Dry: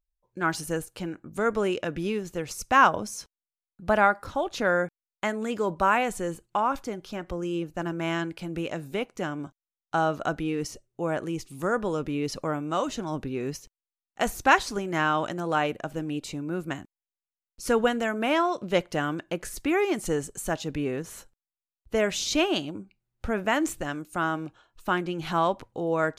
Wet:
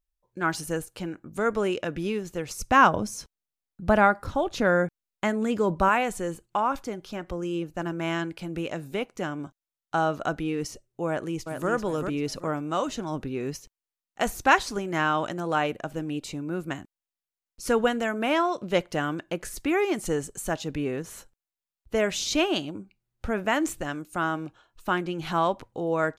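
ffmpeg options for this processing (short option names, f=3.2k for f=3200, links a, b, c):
-filter_complex "[0:a]asettb=1/sr,asplit=3[a][b][c];[a]atrim=end=2.594[d];[b]atrim=start=2.59:end=5.89,asetpts=PTS-STARTPTS,afade=t=in:d=0.004:c=qsin,afade=t=out:st=3.296:d=0.004:c=qsin,lowshelf=f=290:g=8.5[e];[c]atrim=start=5.886[f];[d][e]acrossfade=d=0.004:c1=hsin:c2=qsin[g];[g][f]acrossfade=d=0.004:c1=qsin:c2=hsin,asplit=2[h][i];[i]afade=t=in:st=11.07:d=0.01,afade=t=out:st=11.7:d=0.01,aecho=0:1:390|780|1170|1560:0.501187|0.150356|0.0451069|0.0135321[j];[h][j]amix=inputs=2:normalize=0"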